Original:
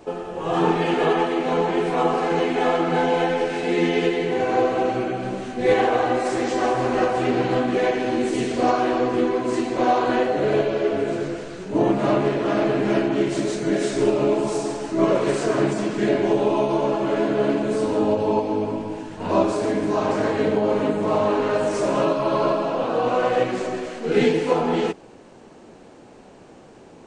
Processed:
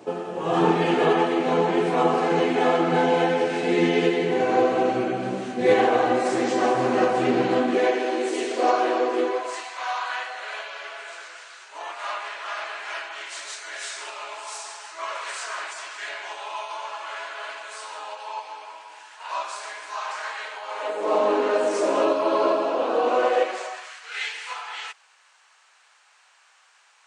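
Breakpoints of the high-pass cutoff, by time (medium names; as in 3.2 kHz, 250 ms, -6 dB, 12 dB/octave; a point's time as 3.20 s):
high-pass 24 dB/octave
7.36 s 130 Hz
8.11 s 350 Hz
9.22 s 350 Hz
9.76 s 1 kHz
20.67 s 1 kHz
21.18 s 290 Hz
23.24 s 290 Hz
23.98 s 1.2 kHz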